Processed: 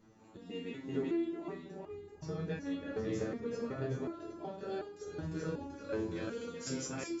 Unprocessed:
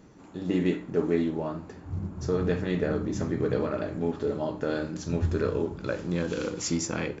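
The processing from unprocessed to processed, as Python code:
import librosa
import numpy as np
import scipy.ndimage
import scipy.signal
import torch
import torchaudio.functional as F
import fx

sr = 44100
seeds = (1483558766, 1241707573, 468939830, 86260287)

p1 = x + fx.echo_feedback(x, sr, ms=383, feedback_pct=42, wet_db=-3.5, dry=0)
p2 = fx.resonator_held(p1, sr, hz=2.7, low_hz=110.0, high_hz=410.0)
y = p2 * 10.0 ** (1.0 / 20.0)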